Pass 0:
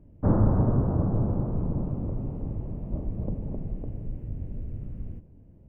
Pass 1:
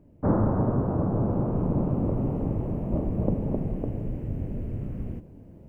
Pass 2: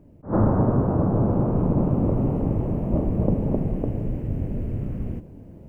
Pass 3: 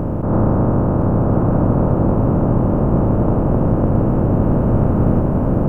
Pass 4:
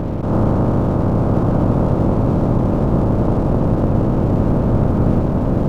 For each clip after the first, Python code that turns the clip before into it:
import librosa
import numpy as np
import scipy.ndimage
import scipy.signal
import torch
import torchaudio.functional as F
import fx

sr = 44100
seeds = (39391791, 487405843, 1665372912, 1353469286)

y1 = fx.low_shelf(x, sr, hz=120.0, db=-12.0)
y1 = fx.rider(y1, sr, range_db=4, speed_s=0.5)
y1 = y1 * 10.0 ** (7.0 / 20.0)
y2 = fx.attack_slew(y1, sr, db_per_s=230.0)
y2 = y2 * 10.0 ** (4.5 / 20.0)
y3 = fx.bin_compress(y2, sr, power=0.2)
y3 = fx.rider(y3, sr, range_db=10, speed_s=2.0)
y3 = y3 + 10.0 ** (-5.0 / 20.0) * np.pad(y3, (int(1015 * sr / 1000.0), 0))[:len(y3)]
y3 = y3 * 10.0 ** (-1.0 / 20.0)
y4 = np.sign(y3) * np.maximum(np.abs(y3) - 10.0 ** (-38.0 / 20.0), 0.0)